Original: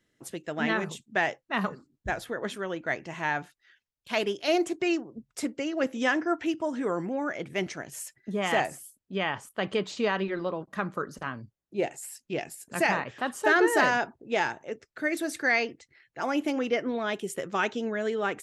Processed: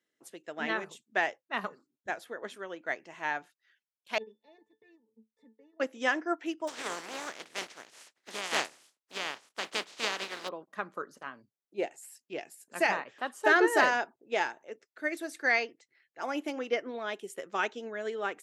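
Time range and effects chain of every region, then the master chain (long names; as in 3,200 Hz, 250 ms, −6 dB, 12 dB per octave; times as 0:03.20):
0:04.18–0:05.80: low-shelf EQ 340 Hz +3.5 dB + transient designer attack −5 dB, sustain −10 dB + resonances in every octave A, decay 0.15 s
0:06.67–0:10.47: compressing power law on the bin magnitudes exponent 0.26 + high-frequency loss of the air 72 metres
whole clip: high-pass filter 310 Hz 12 dB per octave; expander for the loud parts 1.5 to 1, over −37 dBFS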